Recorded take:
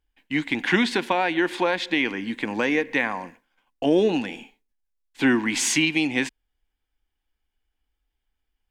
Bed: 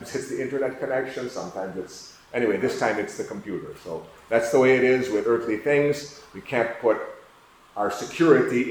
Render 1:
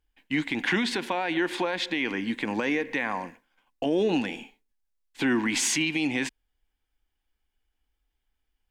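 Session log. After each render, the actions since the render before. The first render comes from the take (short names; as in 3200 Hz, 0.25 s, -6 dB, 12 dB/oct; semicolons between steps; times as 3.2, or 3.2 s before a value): limiter -16.5 dBFS, peak gain reduction 6.5 dB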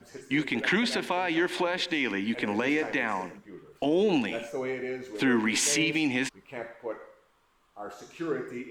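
add bed -15 dB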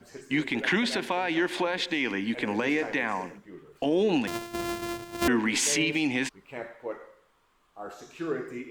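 4.27–5.28 sample sorter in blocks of 128 samples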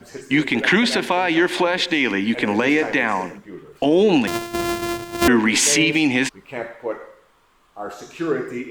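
gain +9 dB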